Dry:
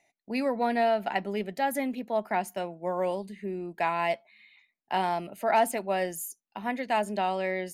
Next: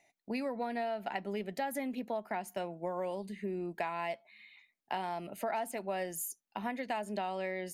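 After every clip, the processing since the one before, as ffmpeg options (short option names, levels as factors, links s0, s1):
-af "acompressor=threshold=0.0224:ratio=6"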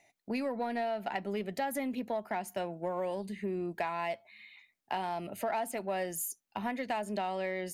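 -filter_complex "[0:a]equalizer=f=100:t=o:w=0.21:g=13.5,asplit=2[s0][s1];[s1]asoftclip=type=tanh:threshold=0.0168,volume=0.422[s2];[s0][s2]amix=inputs=2:normalize=0"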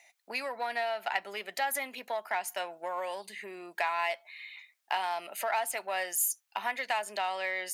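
-af "highpass=1000,volume=2.51"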